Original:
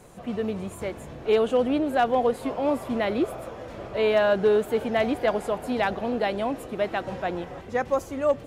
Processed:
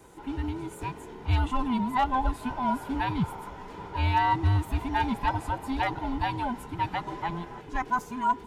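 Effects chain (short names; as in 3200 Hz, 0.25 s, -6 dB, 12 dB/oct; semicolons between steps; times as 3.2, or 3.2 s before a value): band inversion scrambler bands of 500 Hz; gain -3 dB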